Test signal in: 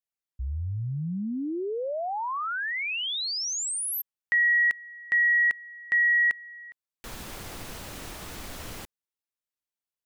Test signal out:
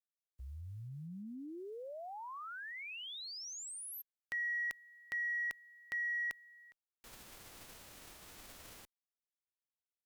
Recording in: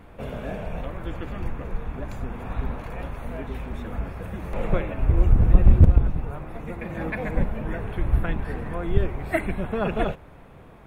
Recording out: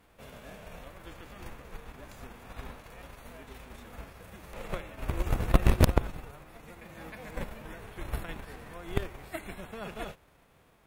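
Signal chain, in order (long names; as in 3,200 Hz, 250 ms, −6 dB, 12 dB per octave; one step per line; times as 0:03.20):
spectral envelope flattened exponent 0.6
harmonic generator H 3 −12 dB, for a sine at 1 dBFS
level −3.5 dB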